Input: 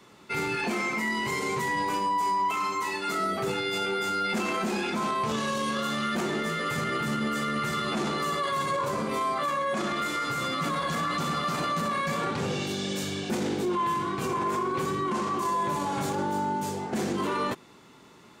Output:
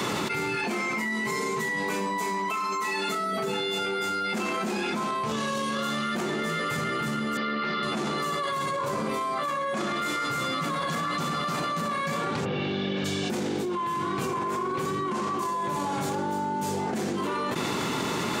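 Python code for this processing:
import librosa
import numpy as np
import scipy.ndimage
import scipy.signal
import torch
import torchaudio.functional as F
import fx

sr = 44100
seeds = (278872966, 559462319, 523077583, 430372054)

y = fx.comb(x, sr, ms=4.6, depth=0.65, at=(1.05, 3.79))
y = fx.cheby1_bandpass(y, sr, low_hz=180.0, high_hz=4700.0, order=4, at=(7.37, 7.83))
y = fx.lowpass(y, sr, hz=3400.0, slope=24, at=(12.44, 13.04), fade=0.02)
y = scipy.signal.sosfilt(scipy.signal.butter(2, 77.0, 'highpass', fs=sr, output='sos'), y)
y = fx.env_flatten(y, sr, amount_pct=100)
y = y * librosa.db_to_amplitude(-6.0)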